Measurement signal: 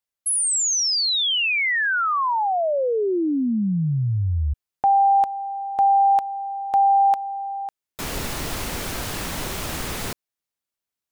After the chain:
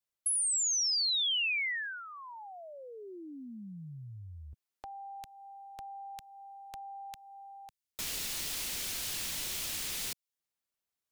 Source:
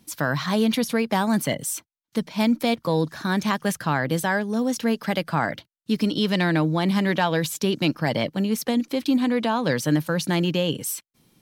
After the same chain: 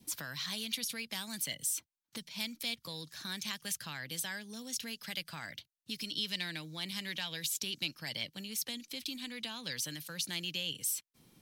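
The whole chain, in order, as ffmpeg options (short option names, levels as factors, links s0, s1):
-filter_complex "[0:a]acrossover=split=160|2400[s0][s1][s2];[s0]acompressor=threshold=0.00224:ratio=4[s3];[s1]acompressor=threshold=0.00282:ratio=4[s4];[s2]acompressor=threshold=0.0447:ratio=4[s5];[s3][s4][s5]amix=inputs=3:normalize=0,adynamicequalizer=threshold=0.00398:dfrequency=1300:dqfactor=2.9:tfrequency=1300:tqfactor=2.9:attack=5:release=100:ratio=0.375:range=2.5:mode=cutabove:tftype=bell,volume=0.708"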